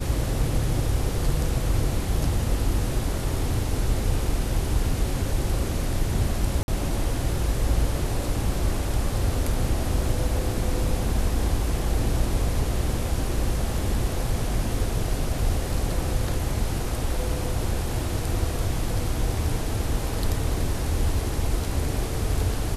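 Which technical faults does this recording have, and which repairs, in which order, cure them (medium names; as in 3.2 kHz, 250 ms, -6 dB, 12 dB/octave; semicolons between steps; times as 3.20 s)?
6.63–6.68 s: dropout 51 ms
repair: interpolate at 6.63 s, 51 ms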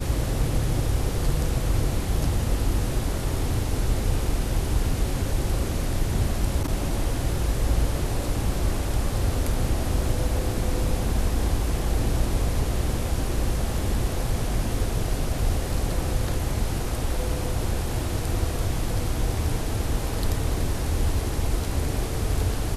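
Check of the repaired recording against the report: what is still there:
nothing left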